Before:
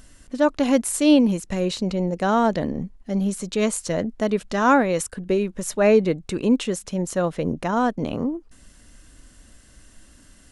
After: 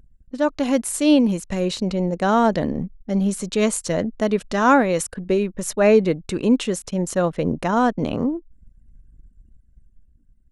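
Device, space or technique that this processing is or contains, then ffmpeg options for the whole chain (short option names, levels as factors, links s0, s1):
voice memo with heavy noise removal: -af "anlmdn=0.1,dynaudnorm=f=240:g=9:m=1.68,volume=0.841"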